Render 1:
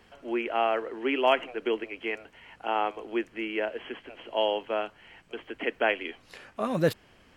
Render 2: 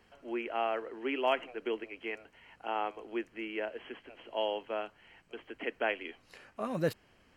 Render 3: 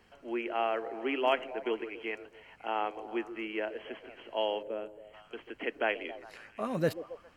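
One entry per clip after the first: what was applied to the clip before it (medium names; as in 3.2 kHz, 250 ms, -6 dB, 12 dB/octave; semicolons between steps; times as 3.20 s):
band-stop 3.5 kHz, Q 9.2; trim -6.5 dB
repeats whose band climbs or falls 136 ms, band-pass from 380 Hz, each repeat 0.7 oct, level -10.5 dB; time-frequency box 4.63–5.14 s, 640–6700 Hz -11 dB; trim +1.5 dB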